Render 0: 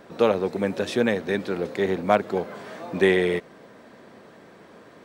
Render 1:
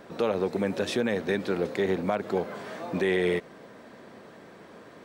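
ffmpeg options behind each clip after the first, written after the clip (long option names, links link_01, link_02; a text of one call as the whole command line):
ffmpeg -i in.wav -af "alimiter=limit=-16dB:level=0:latency=1:release=101" out.wav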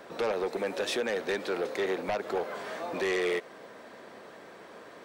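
ffmpeg -i in.wav -filter_complex "[0:a]acrossover=split=350[link_01][link_02];[link_01]acompressor=threshold=-40dB:ratio=6[link_03];[link_02]aeval=exprs='0.141*sin(PI/2*2*val(0)/0.141)':channel_layout=same[link_04];[link_03][link_04]amix=inputs=2:normalize=0,volume=-8dB" out.wav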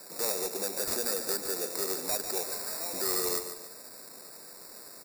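ffmpeg -i in.wav -filter_complex "[0:a]acrossover=split=470[link_01][link_02];[link_02]acrusher=samples=14:mix=1:aa=0.000001[link_03];[link_01][link_03]amix=inputs=2:normalize=0,aexciter=amount=6.4:drive=5.9:freq=4300,aecho=1:1:145|290|435|580:0.335|0.127|0.0484|0.0184,volume=-6dB" out.wav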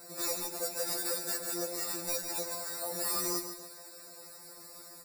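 ffmpeg -i in.wav -af "afftfilt=real='re*2.83*eq(mod(b,8),0)':imag='im*2.83*eq(mod(b,8),0)':win_size=2048:overlap=0.75" out.wav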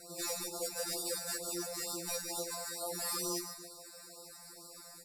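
ffmpeg -i in.wav -af "asoftclip=type=tanh:threshold=-27dB,lowpass=12000,afftfilt=real='re*(1-between(b*sr/1024,330*pow(2100/330,0.5+0.5*sin(2*PI*2.2*pts/sr))/1.41,330*pow(2100/330,0.5+0.5*sin(2*PI*2.2*pts/sr))*1.41))':imag='im*(1-between(b*sr/1024,330*pow(2100/330,0.5+0.5*sin(2*PI*2.2*pts/sr))/1.41,330*pow(2100/330,0.5+0.5*sin(2*PI*2.2*pts/sr))*1.41))':win_size=1024:overlap=0.75" out.wav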